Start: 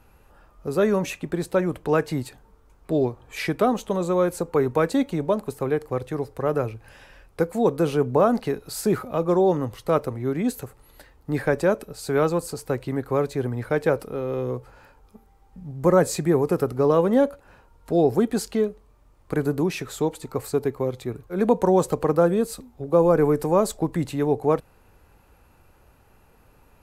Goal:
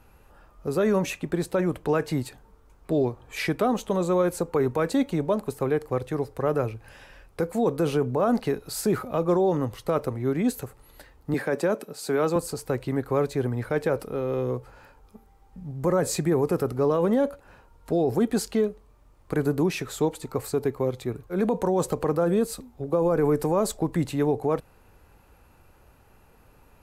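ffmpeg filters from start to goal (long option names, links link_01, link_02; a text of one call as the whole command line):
ffmpeg -i in.wav -filter_complex "[0:a]alimiter=limit=-14.5dB:level=0:latency=1:release=25,asettb=1/sr,asplit=3[link_01][link_02][link_03];[link_01]atrim=end=11.344[link_04];[link_02]atrim=start=11.34:end=12.36,asetpts=PTS-STARTPTS,afade=type=in:duration=0.004:curve=qsin,afade=type=out:start_time=1.016:duration=0.004:curve=qsin,highpass=frequency=160:width=0.5412,highpass=frequency=160:width=1.3066[link_05];[link_03]atrim=start=12.356[link_06];[link_04][link_05]acrossfade=duration=0.004:curve1=hsin:curve2=qsin[link_07];[link_07][link_06]acrossfade=duration=0.004:curve1=qsin:curve2=hsin" out.wav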